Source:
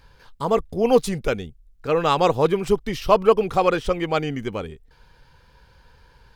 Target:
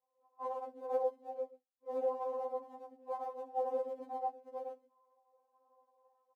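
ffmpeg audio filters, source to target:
-filter_complex "[0:a]aecho=1:1:3.5:0.73,asettb=1/sr,asplit=3[a][b][c];[a]atrim=end=2.044[d];[b]atrim=start=2.04:end=2.66,asetpts=PTS-STARTPTS,afade=t=in:d=0.004:c=qsin,afade=t=out:st=0.616:d=0.004:c=qsin,aeval=exprs='max(val(0),0)':c=same[e];[c]atrim=start=2.656[f];[d][e]acrossfade=d=0.004:c1=hsin:c2=qsin[g];[g][f]acrossfade=d=0.004:c1=qsin:c2=hsin,afftfilt=real='re*between(b*sr/4096,320,970)':imag='im*between(b*sr/4096,320,970)':win_size=4096:overlap=0.75,dynaudnorm=f=110:g=5:m=11dB,flanger=delay=1.3:depth=3.2:regen=64:speed=0.57:shape=triangular,aecho=1:1:67.06|113.7:0.316|0.794,afftfilt=real='hypot(re,im)*cos(2*PI*random(0))':imag='hypot(re,im)*sin(2*PI*random(1))':win_size=512:overlap=0.75,flanger=delay=2.1:depth=9.5:regen=-55:speed=1.7:shape=sinusoidal,aderivative,afftfilt=real='re*3.46*eq(mod(b,12),0)':imag='im*3.46*eq(mod(b,12),0)':win_size=2048:overlap=0.75,volume=13dB"

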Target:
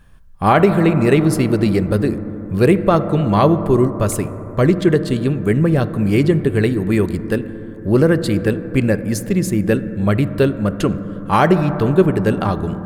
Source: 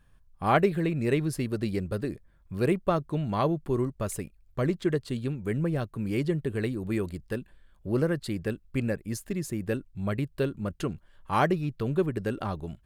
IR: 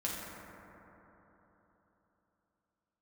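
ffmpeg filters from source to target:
-filter_complex "[0:a]asplit=2[a][b];[1:a]atrim=start_sample=2205,highshelf=f=3.8k:g=-11.5[c];[b][c]afir=irnorm=-1:irlink=0,volume=-12dB[d];[a][d]amix=inputs=2:normalize=0,alimiter=level_in=12.5dB:limit=-1dB:release=50:level=0:latency=1,volume=-1dB"

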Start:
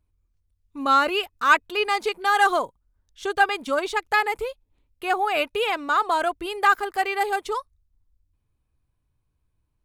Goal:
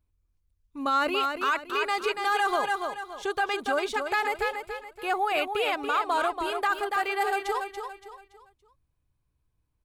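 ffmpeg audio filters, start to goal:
-af "aecho=1:1:284|568|852|1136:0.447|0.161|0.0579|0.0208,alimiter=limit=-14dB:level=0:latency=1:release=27,volume=-3dB"

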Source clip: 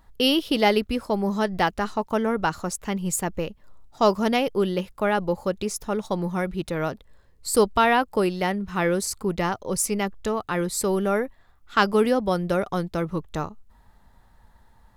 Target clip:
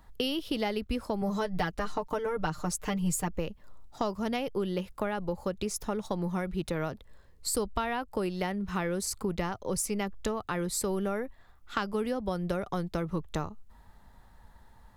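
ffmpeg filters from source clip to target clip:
-filter_complex "[0:a]asettb=1/sr,asplit=3[a][b][c];[a]atrim=end=1.214[d];[b]atrim=start=1.21:end=3.28,asetpts=PTS-STARTPTS,afade=t=in:d=0.004:c=qsin,afade=t=out:st=2.066:d=0.004:c=qsin,aecho=1:1:6.6:0.88,atrim=end_sample=91287[e];[c]atrim=start=3.276[f];[d][e]acrossfade=d=0.004:c1=hsin:c2=qsin[g];[g][f]acrossfade=d=0.004:c1=qsin:c2=hsin,acrossover=split=120[h][i];[i]acompressor=threshold=-29dB:ratio=6[j];[h][j]amix=inputs=2:normalize=0"

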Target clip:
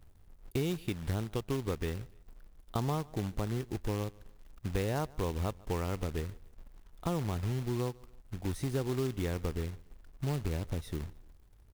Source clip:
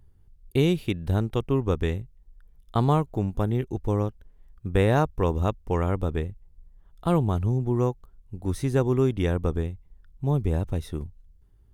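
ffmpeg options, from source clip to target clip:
-filter_complex "[0:a]asettb=1/sr,asplit=3[a][b][c];[a]atrim=end=1.224[d];[b]atrim=start=1.22:end=2.01,asetpts=PTS-STARTPTS,afade=t=in:d=0.004:c=qsin,afade=t=out:st=0.786:d=0.004:c=qsin,lowshelf=f=97:g=-3[e];[c]atrim=start=2.006[f];[d][e]acrossfade=d=0.004:c1=hsin:c2=qsin[g];[g][f]acrossfade=d=0.004:c1=qsin:c2=hsin,acrusher=bits=3:mode=log:mix=0:aa=0.000001,acompressor=threshold=-30dB:ratio=2.5,aecho=1:1:147|294:0.0631|0.024,volume=-2.5dB"

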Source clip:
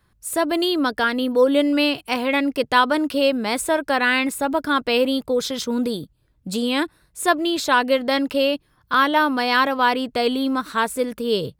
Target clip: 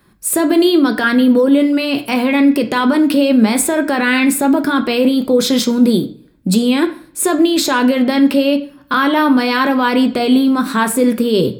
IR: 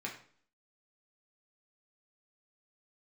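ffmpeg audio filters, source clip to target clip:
-filter_complex "[0:a]equalizer=f=260:t=o:w=1.5:g=6.5,alimiter=limit=-15.5dB:level=0:latency=1:release=19,asplit=2[a][b];[1:a]atrim=start_sample=2205,highshelf=f=6.6k:g=10.5[c];[b][c]afir=irnorm=-1:irlink=0,volume=-1.5dB[d];[a][d]amix=inputs=2:normalize=0,volume=5dB"

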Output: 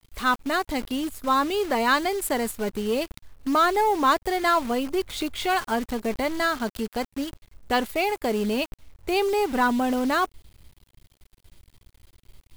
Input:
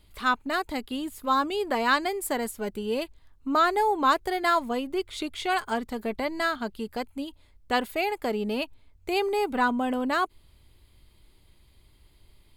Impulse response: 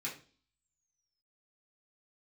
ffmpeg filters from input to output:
-filter_complex "[0:a]lowshelf=f=110:g=6,asplit=2[a][b];[b]volume=26dB,asoftclip=hard,volume=-26dB,volume=-6dB[c];[a][c]amix=inputs=2:normalize=0,acrusher=bits=7:dc=4:mix=0:aa=0.000001"

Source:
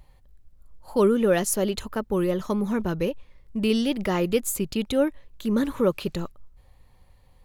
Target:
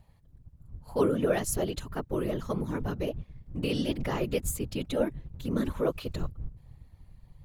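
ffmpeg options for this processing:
-af "asubboost=boost=4:cutoff=52,afftfilt=real='hypot(re,im)*cos(2*PI*random(0))':imag='hypot(re,im)*sin(2*PI*random(1))':win_size=512:overlap=0.75"

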